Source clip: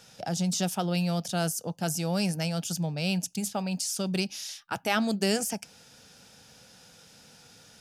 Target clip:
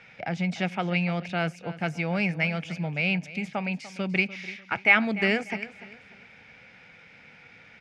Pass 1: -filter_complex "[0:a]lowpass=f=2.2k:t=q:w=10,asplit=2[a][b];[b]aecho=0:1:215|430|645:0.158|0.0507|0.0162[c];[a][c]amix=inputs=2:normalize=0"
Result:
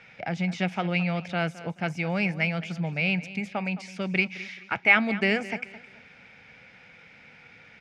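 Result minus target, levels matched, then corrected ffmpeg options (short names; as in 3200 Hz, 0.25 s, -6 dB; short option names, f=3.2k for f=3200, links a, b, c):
echo 80 ms early
-filter_complex "[0:a]lowpass=f=2.2k:t=q:w=10,asplit=2[a][b];[b]aecho=0:1:295|590|885:0.158|0.0507|0.0162[c];[a][c]amix=inputs=2:normalize=0"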